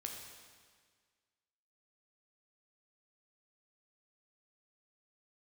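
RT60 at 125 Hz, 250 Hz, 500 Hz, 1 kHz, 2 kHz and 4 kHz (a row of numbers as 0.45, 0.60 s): 1.7, 1.7, 1.7, 1.7, 1.7, 1.6 s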